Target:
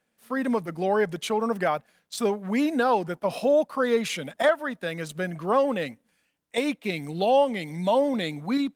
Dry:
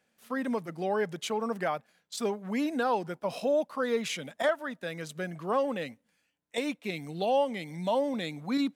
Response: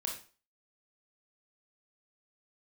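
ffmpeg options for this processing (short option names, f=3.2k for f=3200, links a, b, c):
-af "dynaudnorm=f=120:g=5:m=6dB" -ar 48000 -c:a libopus -b:a 32k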